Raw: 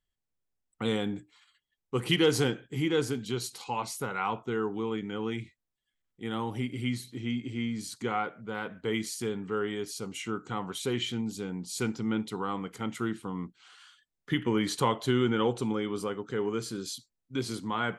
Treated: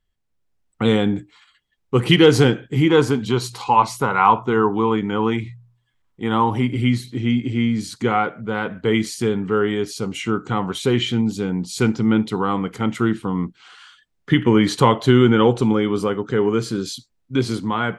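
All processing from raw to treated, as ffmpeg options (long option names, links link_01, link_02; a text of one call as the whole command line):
ffmpeg -i in.wav -filter_complex "[0:a]asettb=1/sr,asplit=3[link_01][link_02][link_03];[link_01]atrim=end=2.894[link_04];[link_02]atrim=start=2.89:end=6.76,asetpts=PTS-STARTPTS,afade=type=in:duration=0.004:curve=qsin,afade=type=out:start_time=3.866:duration=0.004:curve=qsin,equalizer=frequency=1000:width_type=o:width=0.58:gain=9.5,bandreject=frequency=59.75:width_type=h:width=4,bandreject=frequency=119.5:width_type=h:width=4,bandreject=frequency=179.25:width_type=h:width=4[link_05];[link_03]atrim=start=6.756[link_06];[link_04][link_05]acrossfade=duration=0.004:curve1=hsin:curve2=qsin[link_07];[link_07][link_06]acrossfade=duration=0.004:curve1=qsin:curve2=hsin,lowpass=frequency=3900:poles=1,lowshelf=frequency=170:gain=4.5,dynaudnorm=framelen=200:gausssize=5:maxgain=3.5dB,volume=8dB" out.wav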